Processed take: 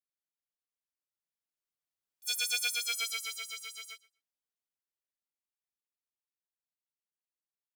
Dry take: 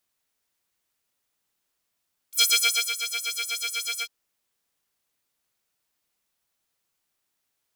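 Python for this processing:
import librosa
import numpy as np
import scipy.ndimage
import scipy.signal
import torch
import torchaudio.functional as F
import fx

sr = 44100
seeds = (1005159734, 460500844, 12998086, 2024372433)

p1 = fx.doppler_pass(x, sr, speed_mps=16, closest_m=3.6, pass_at_s=2.92)
p2 = p1 + fx.echo_feedback(p1, sr, ms=123, feedback_pct=16, wet_db=-21.5, dry=0)
y = F.gain(torch.from_numpy(p2), -3.5).numpy()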